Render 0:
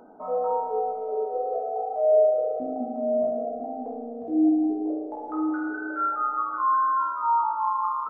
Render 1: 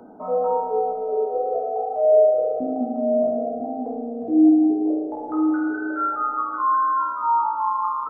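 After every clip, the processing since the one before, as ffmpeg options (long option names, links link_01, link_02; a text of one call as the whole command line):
ffmpeg -i in.wav -filter_complex "[0:a]acrossover=split=190|330[link_01][link_02][link_03];[link_01]acompressor=threshold=-52dB:ratio=6[link_04];[link_04][link_02][link_03]amix=inputs=3:normalize=0,equalizer=frequency=140:width=0.43:gain=9,volume=1.5dB" out.wav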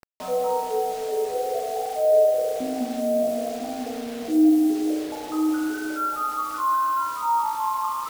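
ffmpeg -i in.wav -af "acrusher=bits=5:mix=0:aa=0.000001,volume=-2.5dB" out.wav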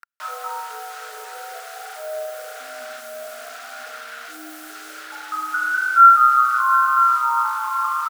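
ffmpeg -i in.wav -filter_complex "[0:a]highpass=frequency=1400:width_type=q:width=8.8,asplit=2[link_01][link_02];[link_02]adelay=705,lowpass=frequency=2000:poles=1,volume=-10.5dB,asplit=2[link_03][link_04];[link_04]adelay=705,lowpass=frequency=2000:poles=1,volume=0.3,asplit=2[link_05][link_06];[link_06]adelay=705,lowpass=frequency=2000:poles=1,volume=0.3[link_07];[link_01][link_03][link_05][link_07]amix=inputs=4:normalize=0" out.wav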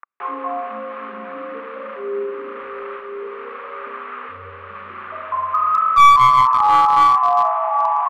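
ffmpeg -i in.wav -af "acontrast=50,highpass=frequency=380:width_type=q:width=0.5412,highpass=frequency=380:width_type=q:width=1.307,lowpass=frequency=2700:width_type=q:width=0.5176,lowpass=frequency=2700:width_type=q:width=0.7071,lowpass=frequency=2700:width_type=q:width=1.932,afreqshift=-220,aeval=exprs='clip(val(0),-1,0.376)':channel_layout=same,volume=-1dB" out.wav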